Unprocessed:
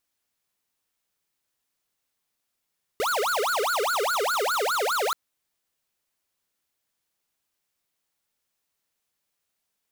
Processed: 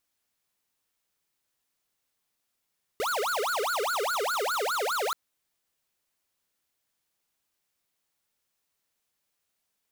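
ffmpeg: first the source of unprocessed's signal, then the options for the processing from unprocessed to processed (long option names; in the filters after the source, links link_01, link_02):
-f lavfi -i "aevalsrc='0.0562*(2*lt(mod((935.5*t-534.5/(2*PI*4.9)*sin(2*PI*4.9*t)),1),0.5)-1)':duration=2.13:sample_rate=44100"
-af "alimiter=level_in=4.5dB:limit=-24dB:level=0:latency=1:release=23,volume=-4.5dB"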